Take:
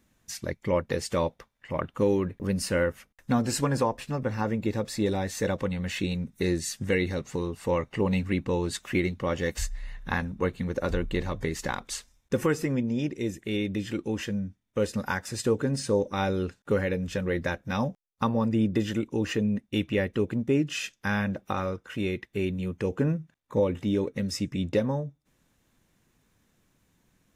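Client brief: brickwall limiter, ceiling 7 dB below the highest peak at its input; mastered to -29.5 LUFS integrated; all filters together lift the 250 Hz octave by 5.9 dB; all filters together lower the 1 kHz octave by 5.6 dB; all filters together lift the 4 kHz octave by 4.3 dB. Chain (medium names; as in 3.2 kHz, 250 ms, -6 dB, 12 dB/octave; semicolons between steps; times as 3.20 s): peaking EQ 250 Hz +8 dB; peaking EQ 1 kHz -8 dB; peaking EQ 4 kHz +6 dB; trim -2 dB; peak limiter -18 dBFS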